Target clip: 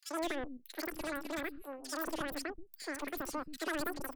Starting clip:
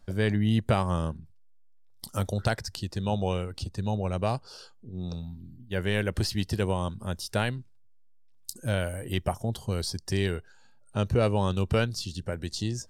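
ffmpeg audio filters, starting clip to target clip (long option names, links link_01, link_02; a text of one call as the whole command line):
ffmpeg -i in.wav -filter_complex "[0:a]asetrate=136710,aresample=44100,aeval=exprs='(tanh(20*val(0)+0.75)-tanh(0.75))/20':channel_layout=same,acrossover=split=250|2700[link_01][link_02][link_03];[link_02]adelay=80[link_04];[link_01]adelay=210[link_05];[link_05][link_04][link_03]amix=inputs=3:normalize=0,volume=-4.5dB" out.wav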